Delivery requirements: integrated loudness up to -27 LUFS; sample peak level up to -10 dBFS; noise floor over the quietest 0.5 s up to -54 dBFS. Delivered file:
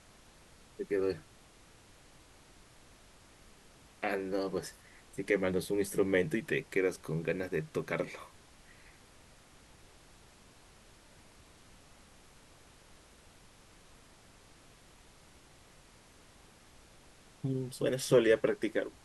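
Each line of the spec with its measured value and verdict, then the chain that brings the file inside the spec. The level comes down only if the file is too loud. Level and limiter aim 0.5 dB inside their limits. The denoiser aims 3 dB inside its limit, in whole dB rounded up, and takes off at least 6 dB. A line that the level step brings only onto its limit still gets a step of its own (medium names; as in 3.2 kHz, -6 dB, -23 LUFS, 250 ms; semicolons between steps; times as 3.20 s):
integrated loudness -33.0 LUFS: pass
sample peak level -14.0 dBFS: pass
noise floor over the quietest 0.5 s -59 dBFS: pass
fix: none needed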